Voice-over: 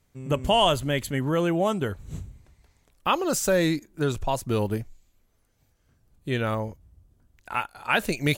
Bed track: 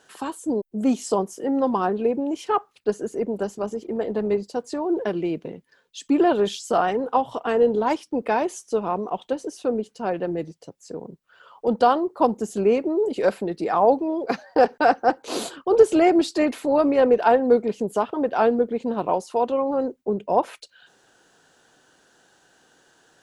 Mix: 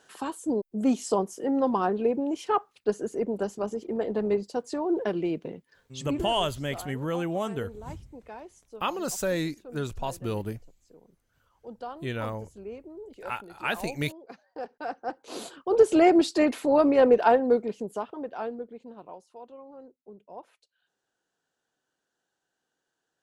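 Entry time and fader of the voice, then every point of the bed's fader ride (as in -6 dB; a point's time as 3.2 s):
5.75 s, -6.0 dB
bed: 6 s -3 dB
6.33 s -21 dB
14.55 s -21 dB
16.01 s -1.5 dB
17.18 s -1.5 dB
19.3 s -23.5 dB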